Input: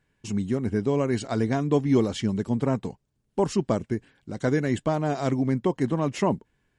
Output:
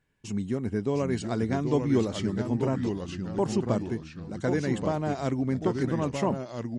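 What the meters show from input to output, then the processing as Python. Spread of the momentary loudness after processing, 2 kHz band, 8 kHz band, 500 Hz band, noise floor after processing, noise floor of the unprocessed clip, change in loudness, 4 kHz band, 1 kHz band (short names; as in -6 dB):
7 LU, -2.5 dB, -2.5 dB, -2.5 dB, -45 dBFS, -73 dBFS, -2.5 dB, -2.5 dB, -3.0 dB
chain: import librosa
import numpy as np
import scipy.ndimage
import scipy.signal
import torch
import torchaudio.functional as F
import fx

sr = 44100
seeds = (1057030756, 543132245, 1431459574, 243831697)

y = fx.echo_pitch(x, sr, ms=676, semitones=-2, count=3, db_per_echo=-6.0)
y = y * 10.0 ** (-3.5 / 20.0)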